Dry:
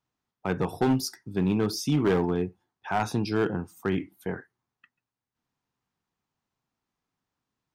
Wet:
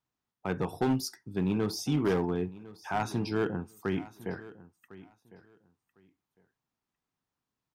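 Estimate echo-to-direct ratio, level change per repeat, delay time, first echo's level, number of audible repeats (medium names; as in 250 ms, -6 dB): -18.5 dB, -14.5 dB, 1054 ms, -18.5 dB, 2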